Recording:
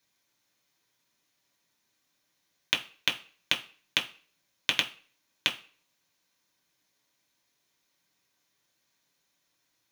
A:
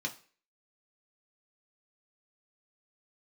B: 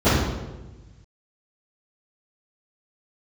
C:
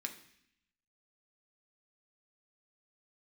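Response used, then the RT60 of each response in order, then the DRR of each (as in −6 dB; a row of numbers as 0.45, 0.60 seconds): A; non-exponential decay, 1.2 s, 0.70 s; 0.5, −21.0, 3.0 decibels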